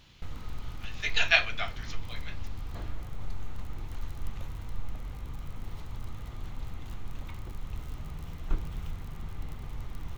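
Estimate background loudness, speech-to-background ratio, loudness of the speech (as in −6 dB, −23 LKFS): −42.5 LKFS, 15.5 dB, −27.0 LKFS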